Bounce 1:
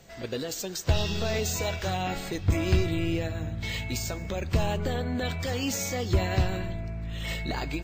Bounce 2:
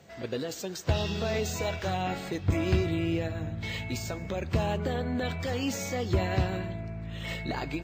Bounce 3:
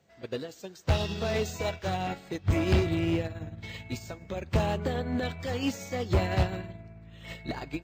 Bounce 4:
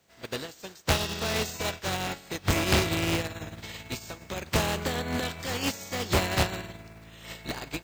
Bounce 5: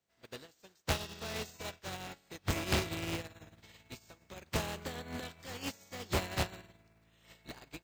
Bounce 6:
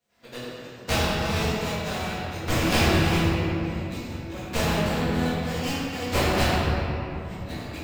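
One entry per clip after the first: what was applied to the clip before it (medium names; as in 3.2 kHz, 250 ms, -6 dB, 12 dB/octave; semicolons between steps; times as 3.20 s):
high-pass 81 Hz; treble shelf 4 kHz -8 dB
hard clipper -24 dBFS, distortion -12 dB; upward expansion 2.5:1, over -38 dBFS; trim +7 dB
spectral contrast reduction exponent 0.56
upward expansion 1.5:1, over -43 dBFS; trim -7 dB
simulated room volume 160 m³, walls hard, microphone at 1.8 m; trim +1 dB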